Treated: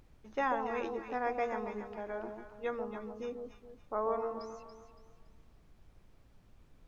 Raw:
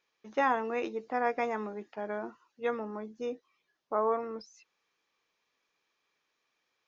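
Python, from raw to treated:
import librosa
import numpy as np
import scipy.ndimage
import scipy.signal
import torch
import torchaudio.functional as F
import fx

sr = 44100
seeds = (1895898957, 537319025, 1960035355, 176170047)

y = fx.echo_alternate(x, sr, ms=141, hz=920.0, feedback_pct=58, wet_db=-4.0)
y = fx.dmg_noise_colour(y, sr, seeds[0], colour='brown', level_db=-53.0)
y = y * librosa.db_to_amplitude(-5.0)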